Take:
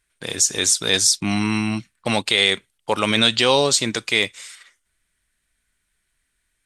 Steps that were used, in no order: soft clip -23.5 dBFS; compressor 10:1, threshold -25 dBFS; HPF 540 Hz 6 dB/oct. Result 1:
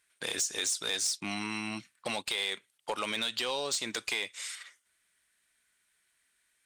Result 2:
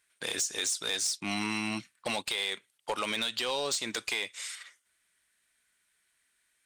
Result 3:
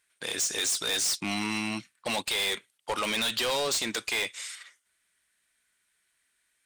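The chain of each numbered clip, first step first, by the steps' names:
compressor > HPF > soft clip; HPF > compressor > soft clip; HPF > soft clip > compressor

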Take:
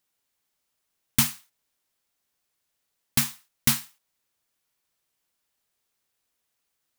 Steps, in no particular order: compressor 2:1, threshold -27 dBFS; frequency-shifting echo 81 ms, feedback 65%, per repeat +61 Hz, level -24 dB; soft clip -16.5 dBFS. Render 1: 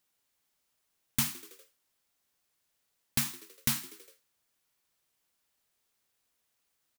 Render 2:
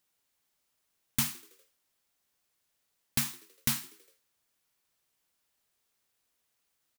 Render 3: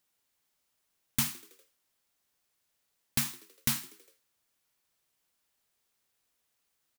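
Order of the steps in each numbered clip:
frequency-shifting echo > compressor > soft clip; compressor > soft clip > frequency-shifting echo; compressor > frequency-shifting echo > soft clip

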